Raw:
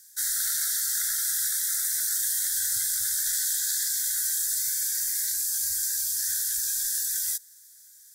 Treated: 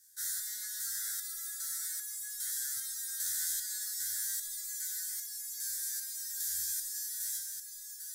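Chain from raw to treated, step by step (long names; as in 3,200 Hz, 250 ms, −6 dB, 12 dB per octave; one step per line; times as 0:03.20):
feedback delay with all-pass diffusion 951 ms, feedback 56%, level −5.5 dB
step-sequenced resonator 2.5 Hz 84–420 Hz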